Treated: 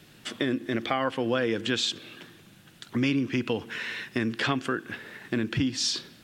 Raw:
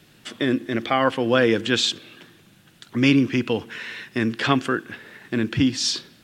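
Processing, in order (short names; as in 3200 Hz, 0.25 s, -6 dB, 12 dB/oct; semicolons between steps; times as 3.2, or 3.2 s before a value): compressor 3:1, threshold -25 dBFS, peak gain reduction 9.5 dB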